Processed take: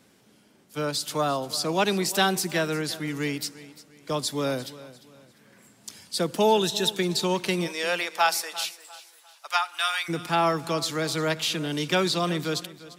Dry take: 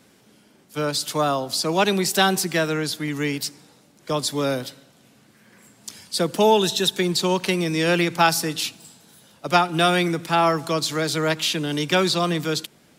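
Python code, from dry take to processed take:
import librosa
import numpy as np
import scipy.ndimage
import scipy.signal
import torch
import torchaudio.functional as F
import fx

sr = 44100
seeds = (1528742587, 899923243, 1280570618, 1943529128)

y = fx.highpass(x, sr, hz=fx.line((7.66, 440.0), (10.08, 1100.0)), slope=24, at=(7.66, 10.08), fade=0.02)
y = fx.echo_feedback(y, sr, ms=348, feedback_pct=34, wet_db=-17.5)
y = F.gain(torch.from_numpy(y), -4.0).numpy()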